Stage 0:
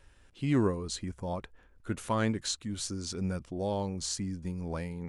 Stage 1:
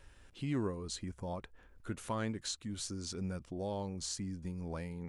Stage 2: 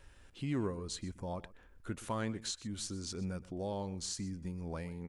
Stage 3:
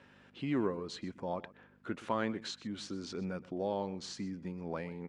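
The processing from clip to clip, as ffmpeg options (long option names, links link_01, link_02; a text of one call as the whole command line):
ffmpeg -i in.wav -af "acompressor=threshold=-49dB:ratio=1.5,volume=1dB" out.wav
ffmpeg -i in.wav -af "aecho=1:1:124:0.119" out.wav
ffmpeg -i in.wav -af "aeval=exprs='val(0)+0.00141*(sin(2*PI*50*n/s)+sin(2*PI*2*50*n/s)/2+sin(2*PI*3*50*n/s)/3+sin(2*PI*4*50*n/s)/4+sin(2*PI*5*50*n/s)/5)':channel_layout=same,highpass=210,lowpass=3300,volume=4.5dB" out.wav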